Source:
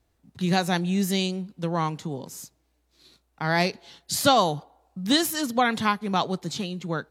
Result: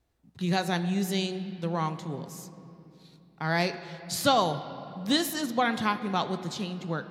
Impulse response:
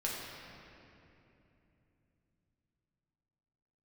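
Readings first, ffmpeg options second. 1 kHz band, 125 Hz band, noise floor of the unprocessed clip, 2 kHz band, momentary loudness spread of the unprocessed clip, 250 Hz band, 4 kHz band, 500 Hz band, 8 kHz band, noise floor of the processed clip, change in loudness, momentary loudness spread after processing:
-3.5 dB, -3.0 dB, -70 dBFS, -3.5 dB, 14 LU, -3.5 dB, -4.0 dB, -3.5 dB, -5.5 dB, -59 dBFS, -4.0 dB, 12 LU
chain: -filter_complex "[0:a]asplit=2[a][b];[1:a]atrim=start_sample=2205,lowpass=6.5k[c];[b][c]afir=irnorm=-1:irlink=0,volume=-11.5dB[d];[a][d]amix=inputs=2:normalize=0,volume=-5.5dB"

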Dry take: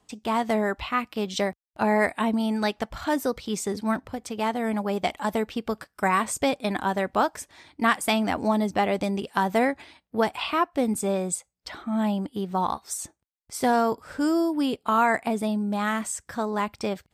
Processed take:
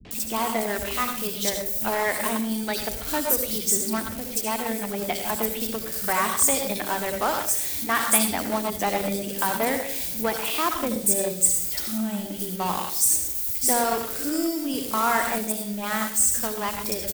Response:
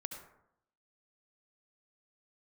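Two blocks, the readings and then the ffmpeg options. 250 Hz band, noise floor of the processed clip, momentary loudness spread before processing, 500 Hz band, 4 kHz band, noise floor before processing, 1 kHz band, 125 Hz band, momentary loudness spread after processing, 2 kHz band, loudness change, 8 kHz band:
-3.5 dB, -33 dBFS, 9 LU, -2.0 dB, +4.0 dB, -77 dBFS, -1.5 dB, -3.0 dB, 8 LU, 0.0 dB, +2.5 dB, +13.0 dB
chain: -filter_complex "[0:a]aeval=exprs='val(0)+0.5*0.0282*sgn(val(0))':c=same,aemphasis=mode=production:type=75fm,acrossover=split=210|3400[a][b][c];[b]adelay=50[d];[c]adelay=110[e];[a][d][e]amix=inputs=3:normalize=0[f];[1:a]atrim=start_sample=2205[g];[f][g]afir=irnorm=-1:irlink=0,acrossover=split=150|700|1700[h][i][j][k];[j]acrusher=bits=4:mix=0:aa=0.5[l];[h][i][l][k]amix=inputs=4:normalize=0"

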